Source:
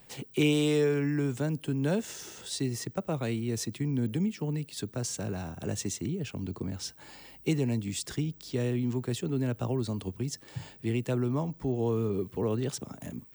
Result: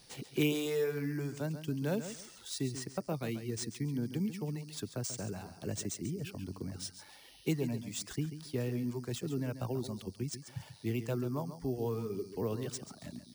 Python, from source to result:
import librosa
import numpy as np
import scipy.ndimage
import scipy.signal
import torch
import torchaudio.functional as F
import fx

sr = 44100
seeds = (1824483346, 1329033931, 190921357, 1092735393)

p1 = fx.dereverb_blind(x, sr, rt60_s=1.3)
p2 = p1 + fx.echo_feedback(p1, sr, ms=138, feedback_pct=23, wet_db=-11, dry=0)
p3 = np.repeat(p2[::3], 3)[:len(p2)]
y = p3 * librosa.db_to_amplitude(-4.0)